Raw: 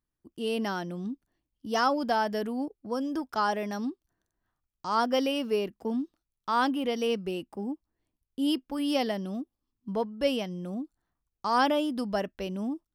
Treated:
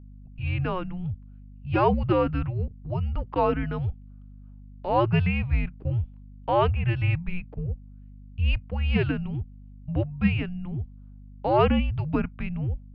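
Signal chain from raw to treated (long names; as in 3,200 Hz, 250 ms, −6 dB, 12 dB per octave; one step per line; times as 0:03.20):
automatic gain control gain up to 4.5 dB
single-sideband voice off tune −360 Hz 160–3,300 Hz
mains hum 50 Hz, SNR 19 dB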